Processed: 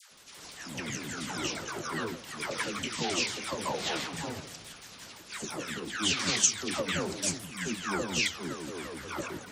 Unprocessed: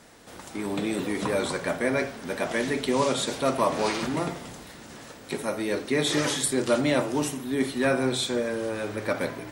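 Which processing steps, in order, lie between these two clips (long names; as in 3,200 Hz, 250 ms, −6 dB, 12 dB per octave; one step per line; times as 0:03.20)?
pitch shifter swept by a sawtooth −10 semitones, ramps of 172 ms
tilt shelving filter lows −7.5 dB, about 1,400 Hz
all-pass dispersion lows, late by 115 ms, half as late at 840 Hz
level −3 dB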